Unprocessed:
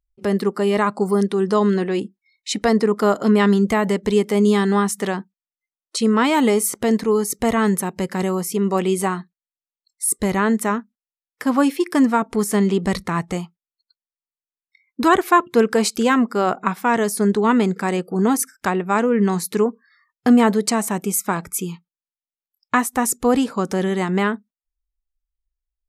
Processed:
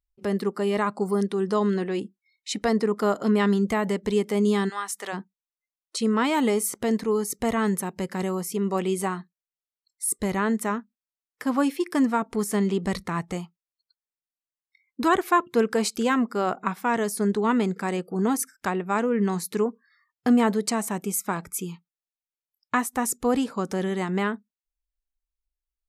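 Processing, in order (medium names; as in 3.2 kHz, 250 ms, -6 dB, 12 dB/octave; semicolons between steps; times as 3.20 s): 4.68–5.12 s: high-pass 1.3 kHz -> 560 Hz 12 dB/octave; trim -6 dB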